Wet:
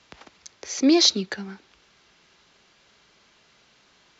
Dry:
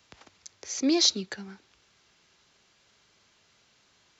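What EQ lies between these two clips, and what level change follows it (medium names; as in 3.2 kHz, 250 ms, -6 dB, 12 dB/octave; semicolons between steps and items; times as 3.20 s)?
distance through air 73 m; peaking EQ 100 Hz -10.5 dB 0.4 oct; +7.0 dB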